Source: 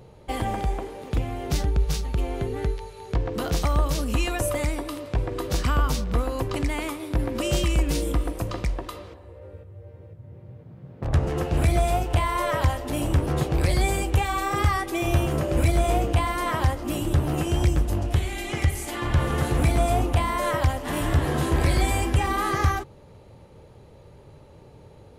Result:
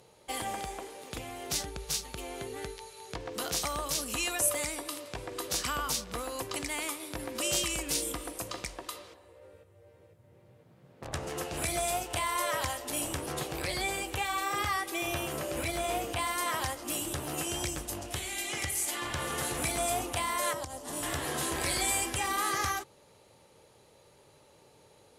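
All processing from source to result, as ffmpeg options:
-filter_complex "[0:a]asettb=1/sr,asplit=3[s0][s1][s2];[s0]atrim=end=13.394[s3];[s1]atrim=start=13.39:end=16.19,asetpts=PTS-STARTPTS,afade=t=in:d=0.004:c=qsin,afade=t=out:st=2.796:d=0.004:c=qsin,acrossover=split=4500[s4][s5];[s5]acompressor=threshold=0.00282:ratio=4:attack=1:release=60[s6];[s4][s6]amix=inputs=2:normalize=0,highshelf=f=11000:g=12[s7];[s2]atrim=start=16.186[s8];[s3][s7]acrossfade=d=0.004:c1=hsin:c2=qsin[s9];[s9][s8]acrossfade=d=0.004:c1=qsin:c2=hsin,asettb=1/sr,asplit=3[s10][s11][s12];[s10]atrim=end=20.534[s13];[s11]atrim=start=20.53:end=21.03,asetpts=PTS-STARTPTS,afade=t=in:d=0.004:c=qsin,afade=t=out:st=0.496:d=0.004:c=qsin,lowpass=9800,equalizer=f=2200:t=o:w=1.9:g=-13,acompressor=threshold=0.0794:ratio=6:attack=3.2:release=140:knee=1:detection=peak[s14];[s12]atrim=start=21.026[s15];[s13][s14]acrossfade=d=0.004:c1=hsin:c2=qsin[s16];[s16][s15]acrossfade=d=0.004:c1=qsin:c2=hsin,lowpass=9500,aemphasis=mode=production:type=riaa,volume=0.501"

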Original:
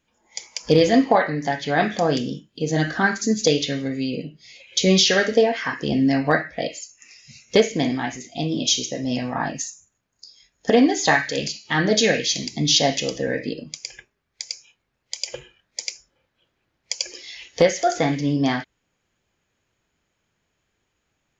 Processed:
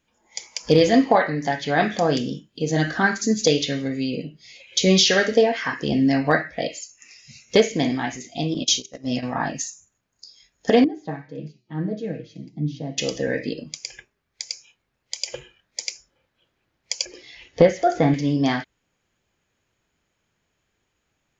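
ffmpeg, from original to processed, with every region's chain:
-filter_complex "[0:a]asettb=1/sr,asplit=3[s0][s1][s2];[s0]atrim=end=8.544[s3];[s1]atrim=start=8.54:end=9.23,asetpts=PTS-STARTPTS,afade=t=in:d=0.004:c=qsin,afade=t=out:st=0.686:d=0.004:c=qsin,agate=range=0.1:threshold=0.0501:ratio=16:release=100:detection=peak,equalizer=f=900:t=o:w=0.22:g=-13,bandreject=f=395.6:t=h:w=4,bandreject=f=791.2:t=h:w=4[s4];[s2]atrim=start=9.226[s5];[s3][s4]acrossfade=d=0.004:c1=hsin:c2=qsin[s6];[s6][s5]acrossfade=d=0.004:c1=qsin:c2=hsin,asettb=1/sr,asplit=3[s7][s8][s9];[s7]atrim=end=10.844[s10];[s8]atrim=start=10.84:end=12.98,asetpts=PTS-STARTPTS,afade=t=in:d=0.004:c=qsin,afade=t=out:st=2.136:d=0.004:c=qsin,aecho=1:1:6.3:0.59,atrim=end_sample=94374,flanger=delay=6.1:depth=3:regen=87:speed=1.7:shape=triangular,bandpass=f=190:t=q:w=1.1[s11];[s9]atrim=start=12.976[s12];[s10][s11]acrossfade=d=0.004:c1=hsin:c2=qsin[s13];[s13][s12]acrossfade=d=0.004:c1=qsin:c2=hsin,asettb=1/sr,asplit=3[s14][s15][s16];[s14]atrim=end=17.054[s17];[s15]atrim=start=17.05:end=18.14,asetpts=PTS-STARTPTS,afade=t=in:d=0.004:c=qsin,afade=t=out:st=1.086:d=0.004:c=qsin,lowpass=f=1700:p=1,lowshelf=f=350:g=6.5[s18];[s16]atrim=start=18.136[s19];[s17][s18]acrossfade=d=0.004:c1=hsin:c2=qsin[s20];[s20][s19]acrossfade=d=0.004:c1=qsin:c2=hsin"

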